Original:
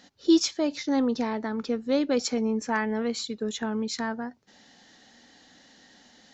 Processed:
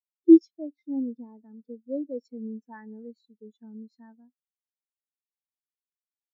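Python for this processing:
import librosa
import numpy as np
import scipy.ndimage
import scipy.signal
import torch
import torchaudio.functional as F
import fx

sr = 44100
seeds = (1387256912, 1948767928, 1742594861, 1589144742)

y = fx.spectral_expand(x, sr, expansion=2.5)
y = y * 10.0 ** (5.5 / 20.0)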